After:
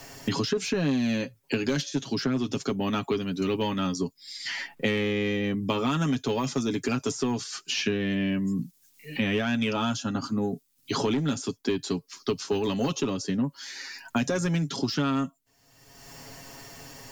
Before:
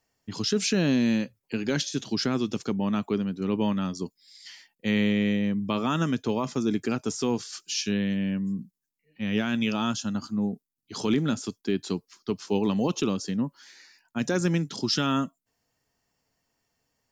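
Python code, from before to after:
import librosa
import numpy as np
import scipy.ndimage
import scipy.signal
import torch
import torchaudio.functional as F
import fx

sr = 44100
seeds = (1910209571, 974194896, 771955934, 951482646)

y = x + 0.59 * np.pad(x, (int(7.3 * sr / 1000.0), 0))[:len(x)]
y = 10.0 ** (-17.0 / 20.0) * np.tanh(y / 10.0 ** (-17.0 / 20.0))
y = fx.band_squash(y, sr, depth_pct=100)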